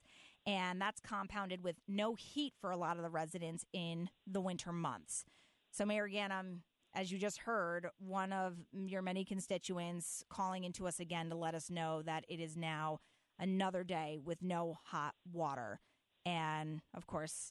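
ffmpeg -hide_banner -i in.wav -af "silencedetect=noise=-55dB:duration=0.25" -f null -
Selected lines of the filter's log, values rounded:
silence_start: 5.22
silence_end: 5.73 | silence_duration: 0.51
silence_start: 6.61
silence_end: 6.93 | silence_duration: 0.33
silence_start: 12.97
silence_end: 13.39 | silence_duration: 0.42
silence_start: 15.77
silence_end: 16.26 | silence_duration: 0.49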